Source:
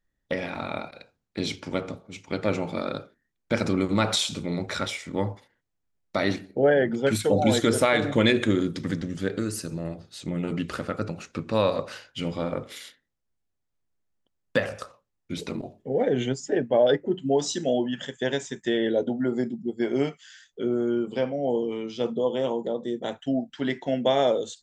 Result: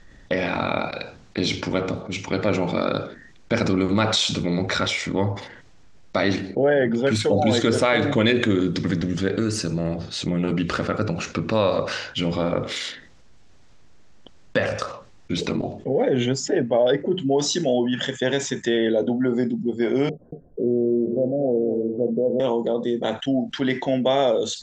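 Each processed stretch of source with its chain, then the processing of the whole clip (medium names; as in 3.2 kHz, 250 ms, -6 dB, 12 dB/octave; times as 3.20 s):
20.09–22.40 s: steep low-pass 650 Hz 48 dB/octave + delay 231 ms -11.5 dB
whole clip: low-pass 6.8 kHz 24 dB/octave; level flattener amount 50%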